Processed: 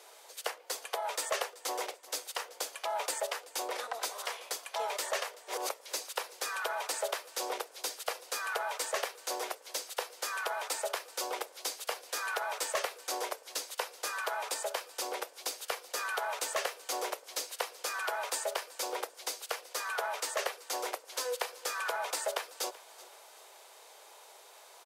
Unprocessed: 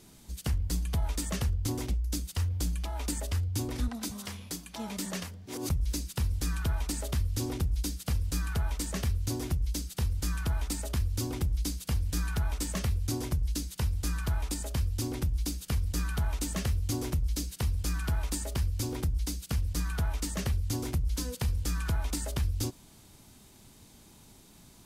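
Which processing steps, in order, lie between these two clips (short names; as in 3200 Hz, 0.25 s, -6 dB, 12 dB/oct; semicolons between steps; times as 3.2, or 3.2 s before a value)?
steep high-pass 470 Hz 48 dB/oct; high shelf 2600 Hz -10.5 dB; in parallel at -2 dB: soft clip -34.5 dBFS, distortion -17 dB; on the sum: feedback echo 0.381 s, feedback 38%, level -19.5 dB; gain +5.5 dB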